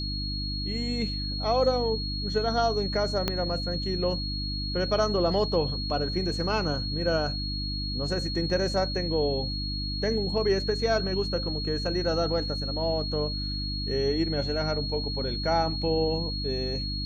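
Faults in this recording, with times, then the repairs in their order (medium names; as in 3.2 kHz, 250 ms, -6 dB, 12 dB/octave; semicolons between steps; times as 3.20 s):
hum 50 Hz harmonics 6 -33 dBFS
whine 4.3 kHz -33 dBFS
3.28 s: pop -11 dBFS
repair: de-click; band-stop 4.3 kHz, Q 30; de-hum 50 Hz, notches 6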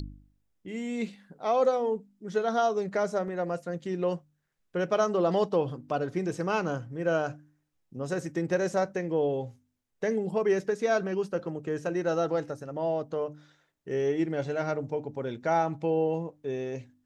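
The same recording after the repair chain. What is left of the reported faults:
3.28 s: pop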